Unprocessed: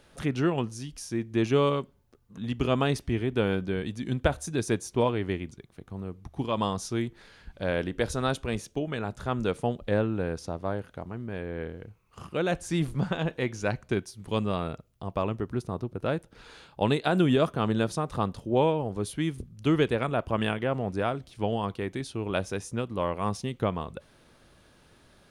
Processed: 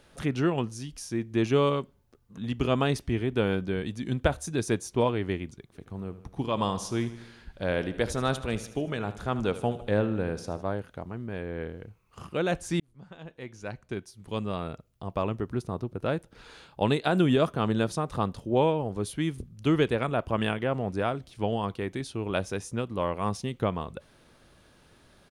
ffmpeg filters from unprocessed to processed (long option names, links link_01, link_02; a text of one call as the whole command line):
ffmpeg -i in.wav -filter_complex "[0:a]asplit=3[link_01][link_02][link_03];[link_01]afade=type=out:start_time=5.73:duration=0.02[link_04];[link_02]aecho=1:1:77|154|231|308|385|462:0.188|0.109|0.0634|0.0368|0.0213|0.0124,afade=type=in:start_time=5.73:duration=0.02,afade=type=out:start_time=10.61:duration=0.02[link_05];[link_03]afade=type=in:start_time=10.61:duration=0.02[link_06];[link_04][link_05][link_06]amix=inputs=3:normalize=0,asplit=2[link_07][link_08];[link_07]atrim=end=12.8,asetpts=PTS-STARTPTS,afade=type=out:start_time=12.796:duration=0.004:curve=hsin[link_09];[link_08]atrim=start=12.8,asetpts=PTS-STARTPTS,afade=type=in:duration=2.48[link_10];[link_09][link_10]concat=n=2:v=0:a=1" out.wav